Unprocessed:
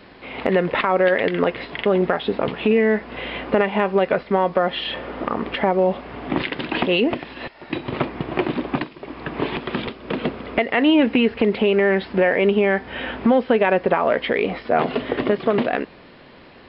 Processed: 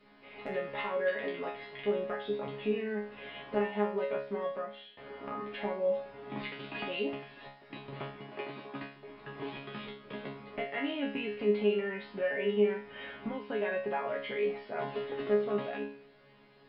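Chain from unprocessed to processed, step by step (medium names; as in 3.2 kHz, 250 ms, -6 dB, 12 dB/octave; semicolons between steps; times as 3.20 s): 4.44–4.97 s: fade out; 8.19–8.82 s: high-pass 260 Hz 6 dB/octave; chord resonator C#3 fifth, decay 0.46 s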